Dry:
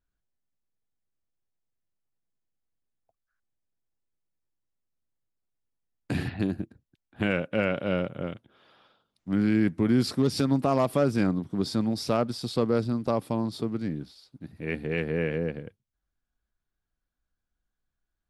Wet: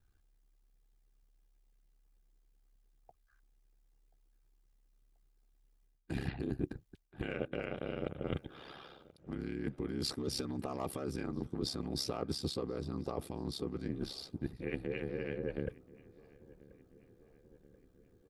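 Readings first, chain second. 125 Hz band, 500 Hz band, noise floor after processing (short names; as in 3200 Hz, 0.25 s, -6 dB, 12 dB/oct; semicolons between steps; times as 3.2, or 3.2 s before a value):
-11.0 dB, -11.5 dB, -71 dBFS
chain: comb 2.5 ms, depth 47%; limiter -22.5 dBFS, peak gain reduction 11.5 dB; low shelf 370 Hz +4.5 dB; reverse; compressor 12:1, threshold -40 dBFS, peak gain reduction 17 dB; reverse; harmonic-percussive split percussive +6 dB; ring modulator 34 Hz; on a send: darkening echo 1.033 s, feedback 65%, low-pass 1900 Hz, level -21.5 dB; on the sum: gain +6 dB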